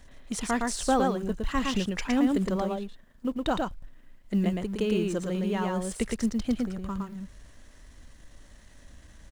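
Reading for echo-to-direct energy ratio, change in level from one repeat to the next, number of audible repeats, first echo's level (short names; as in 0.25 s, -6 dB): -3.0 dB, no steady repeat, 1, -3.0 dB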